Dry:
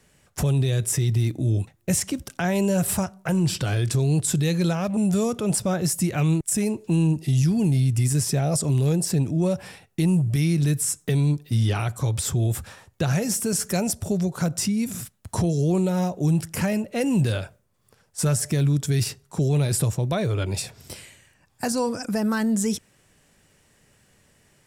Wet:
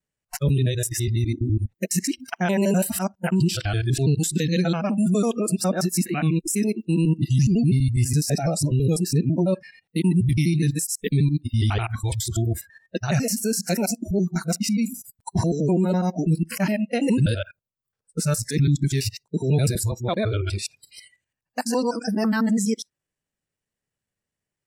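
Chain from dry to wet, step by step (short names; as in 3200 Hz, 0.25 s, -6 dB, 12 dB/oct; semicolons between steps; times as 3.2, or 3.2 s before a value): local time reversal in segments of 83 ms; dynamic EQ 8800 Hz, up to -5 dB, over -41 dBFS, Q 2; spectral noise reduction 29 dB; gain +2 dB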